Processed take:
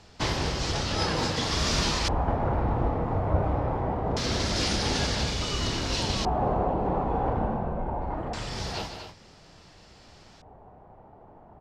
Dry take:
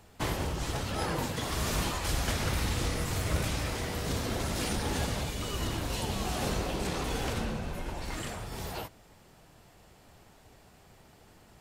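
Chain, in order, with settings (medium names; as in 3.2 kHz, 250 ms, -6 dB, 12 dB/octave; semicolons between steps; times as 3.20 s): doubling 32 ms -11 dB; loudspeakers at several distances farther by 53 m -9 dB, 83 m -9 dB; LFO low-pass square 0.24 Hz 840–5200 Hz; trim +3 dB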